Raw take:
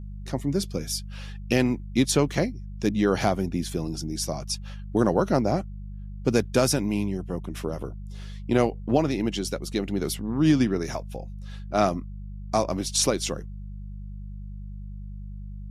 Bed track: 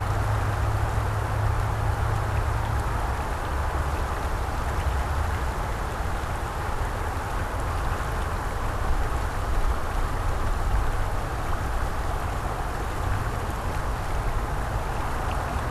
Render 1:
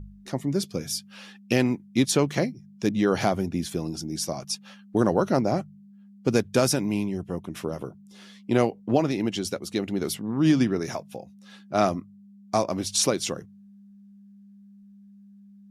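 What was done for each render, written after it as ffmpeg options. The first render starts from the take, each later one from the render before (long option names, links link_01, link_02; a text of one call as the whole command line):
ffmpeg -i in.wav -af "bandreject=frequency=50:width_type=h:width=4,bandreject=frequency=100:width_type=h:width=4,bandreject=frequency=150:width_type=h:width=4" out.wav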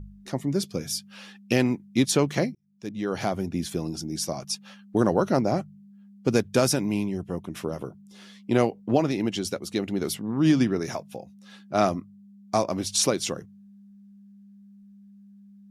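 ffmpeg -i in.wav -filter_complex "[0:a]asplit=2[link_01][link_02];[link_01]atrim=end=2.55,asetpts=PTS-STARTPTS,afade=type=out:start_time=2.546:duration=0.004:curve=hsin[link_03];[link_02]atrim=start=2.55,asetpts=PTS-STARTPTS,afade=type=in:duration=1.1[link_04];[link_03][link_04]concat=n=2:v=0:a=1" out.wav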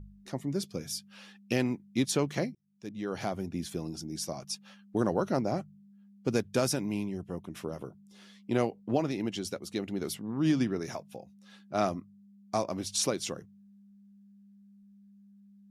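ffmpeg -i in.wav -af "volume=-6.5dB" out.wav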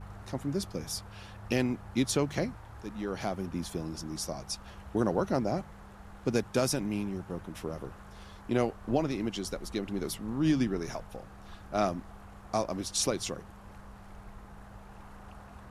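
ffmpeg -i in.wav -i bed.wav -filter_complex "[1:a]volume=-22dB[link_01];[0:a][link_01]amix=inputs=2:normalize=0" out.wav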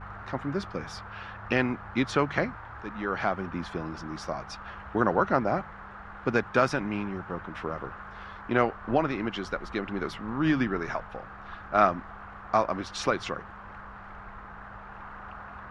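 ffmpeg -i in.wav -af "lowpass=3500,equalizer=frequency=1400:width_type=o:width=1.6:gain=14" out.wav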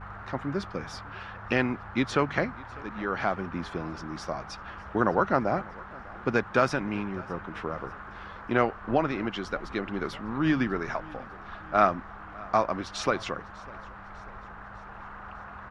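ffmpeg -i in.wav -af "aecho=1:1:599|1198|1797|2396:0.075|0.0397|0.0211|0.0112" out.wav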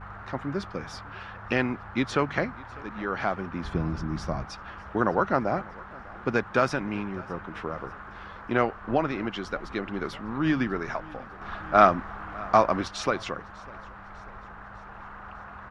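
ffmpeg -i in.wav -filter_complex "[0:a]asettb=1/sr,asplit=3[link_01][link_02][link_03];[link_01]atrim=end=3.644[link_04];[link_02]atrim=start=3.64:end=4.45,asetpts=PTS-STARTPTS,afade=type=in:duration=0.004:curve=qsin,afade=type=out:start_time=0.806:duration=0.004:curve=qsin,bass=frequency=250:gain=12,treble=frequency=4000:gain=-1[link_05];[link_03]atrim=start=4.446[link_06];[link_04][link_05]acrossfade=duration=0.004:curve1=hsin:curve2=qsin[link_07];[link_07][link_06]acrossfade=duration=0.004:curve1=qsin:curve2=hsin,asettb=1/sr,asplit=3[link_08][link_09][link_10];[link_08]atrim=end=11.414[link_11];[link_09]atrim=start=11.41:end=12.88,asetpts=PTS-STARTPTS,afade=type=in:duration=0.004:curve=qsin,afade=type=out:start_time=1.466:duration=0.004:curve=qsin,acontrast=25[link_12];[link_10]atrim=start=12.876[link_13];[link_11][link_12]acrossfade=duration=0.004:curve1=hsin:curve2=qsin[link_14];[link_14][link_13]acrossfade=duration=0.004:curve1=qsin:curve2=hsin" out.wav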